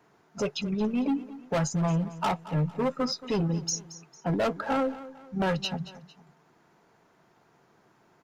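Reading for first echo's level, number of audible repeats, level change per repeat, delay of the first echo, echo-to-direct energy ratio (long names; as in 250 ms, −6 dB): −16.0 dB, 2, −8.0 dB, 226 ms, −15.5 dB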